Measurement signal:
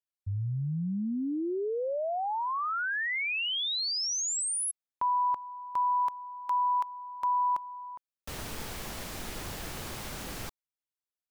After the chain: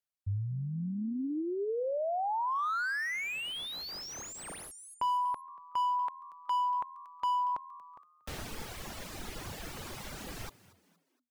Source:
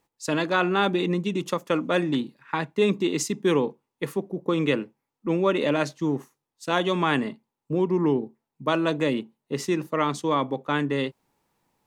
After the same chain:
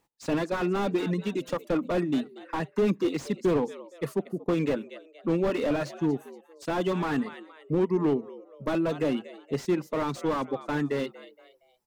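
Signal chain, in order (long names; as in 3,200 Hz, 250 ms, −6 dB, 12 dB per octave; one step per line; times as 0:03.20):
reverb reduction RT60 1.5 s
echo with shifted repeats 234 ms, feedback 39%, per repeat +80 Hz, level −20 dB
slew-rate limiting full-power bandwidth 40 Hz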